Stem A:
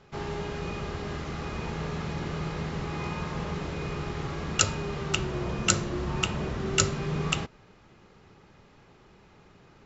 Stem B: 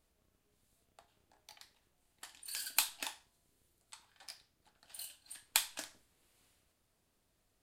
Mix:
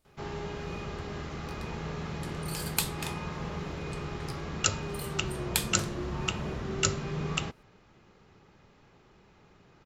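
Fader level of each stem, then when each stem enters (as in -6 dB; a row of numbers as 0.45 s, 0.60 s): -3.5 dB, +2.0 dB; 0.05 s, 0.00 s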